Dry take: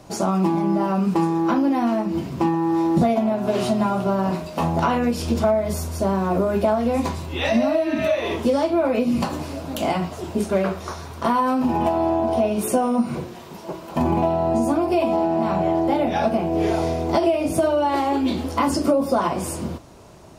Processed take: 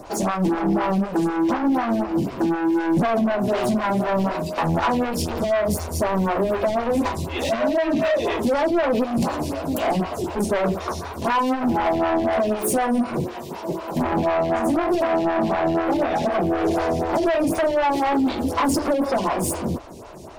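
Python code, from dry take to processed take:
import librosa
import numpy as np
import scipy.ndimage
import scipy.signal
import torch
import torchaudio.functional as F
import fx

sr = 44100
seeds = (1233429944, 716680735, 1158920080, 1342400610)

y = 10.0 ** (-25.0 / 20.0) * np.tanh(x / 10.0 ** (-25.0 / 20.0))
y = fx.stagger_phaser(y, sr, hz=4.0)
y = y * 10.0 ** (9.0 / 20.0)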